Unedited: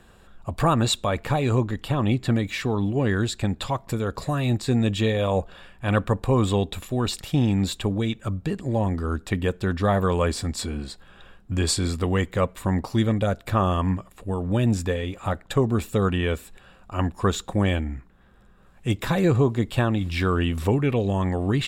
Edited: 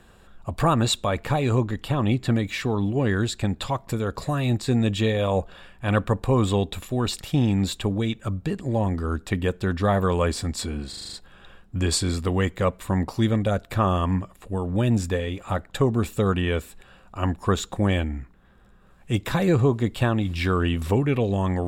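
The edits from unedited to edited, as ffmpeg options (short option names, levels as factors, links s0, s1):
-filter_complex "[0:a]asplit=7[s0][s1][s2][s3][s4][s5][s6];[s0]atrim=end=10.932[s7];[s1]atrim=start=10.888:end=10.932[s8];[s2]atrim=start=10.888:end=10.932[s9];[s3]atrim=start=10.888:end=10.932[s10];[s4]atrim=start=10.888:end=10.932[s11];[s5]atrim=start=10.888:end=10.932[s12];[s6]atrim=start=10.888[s13];[s7][s8]acrossfade=d=0.004:c1=hsin:c2=hsin[s14];[s14][s9]acrossfade=d=0.004:c1=hsin:c2=hsin[s15];[s15][s10]acrossfade=d=0.004:c1=hsin:c2=hsin[s16];[s16][s11]acrossfade=d=0.004:c1=hsin:c2=hsin[s17];[s17][s12]acrossfade=d=0.004:c1=hsin:c2=hsin[s18];[s18][s13]acrossfade=d=0.004:c1=hsin:c2=hsin"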